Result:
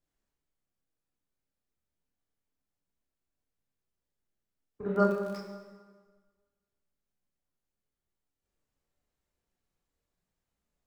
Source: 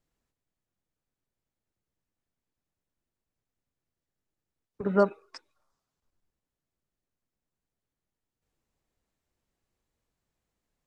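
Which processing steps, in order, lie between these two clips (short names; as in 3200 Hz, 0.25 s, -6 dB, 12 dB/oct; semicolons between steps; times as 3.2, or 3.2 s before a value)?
chorus voices 6, 0.36 Hz, delay 29 ms, depth 3.6 ms; 4.94–5.36 crackle 23/s -> 54/s -35 dBFS; plate-style reverb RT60 1.5 s, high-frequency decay 0.75×, DRR 1.5 dB; gain -2 dB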